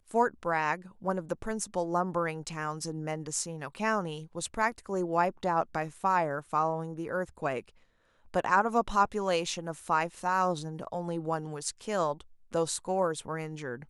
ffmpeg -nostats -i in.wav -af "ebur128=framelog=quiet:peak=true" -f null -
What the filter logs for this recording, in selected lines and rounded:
Integrated loudness:
  I:         -31.3 LUFS
  Threshold: -41.4 LUFS
Loudness range:
  LRA:         3.5 LU
  Threshold: -51.3 LUFS
  LRA low:   -33.1 LUFS
  LRA high:  -29.6 LUFS
True peak:
  Peak:      -10.6 dBFS